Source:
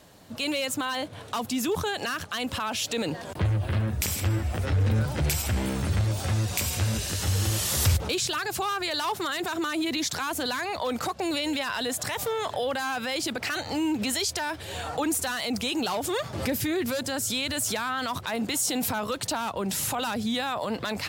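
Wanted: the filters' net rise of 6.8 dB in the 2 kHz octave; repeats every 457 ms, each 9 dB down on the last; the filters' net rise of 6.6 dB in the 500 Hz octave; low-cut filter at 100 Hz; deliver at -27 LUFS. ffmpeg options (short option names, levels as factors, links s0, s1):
-af "highpass=100,equalizer=f=500:t=o:g=7.5,equalizer=f=2000:t=o:g=8.5,aecho=1:1:457|914|1371|1828:0.355|0.124|0.0435|0.0152,volume=0.708"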